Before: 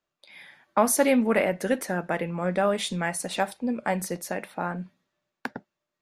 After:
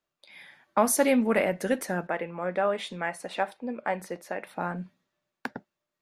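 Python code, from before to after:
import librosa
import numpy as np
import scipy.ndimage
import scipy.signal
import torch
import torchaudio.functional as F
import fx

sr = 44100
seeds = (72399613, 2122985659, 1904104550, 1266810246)

y = fx.bass_treble(x, sr, bass_db=-11, treble_db=-13, at=(2.07, 4.47))
y = F.gain(torch.from_numpy(y), -1.5).numpy()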